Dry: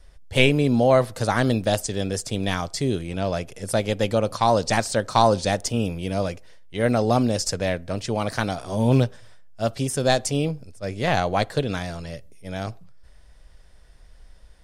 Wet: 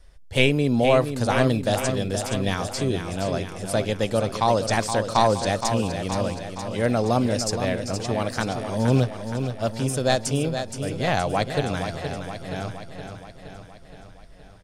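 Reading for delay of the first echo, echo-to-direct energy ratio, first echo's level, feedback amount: 470 ms, −6.0 dB, −8.0 dB, 60%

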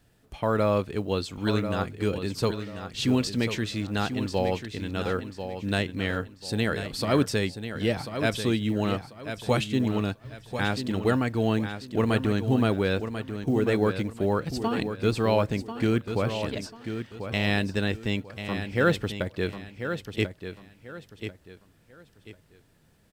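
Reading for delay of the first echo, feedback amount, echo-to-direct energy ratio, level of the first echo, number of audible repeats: 1,041 ms, 29%, −8.5 dB, −9.0 dB, 3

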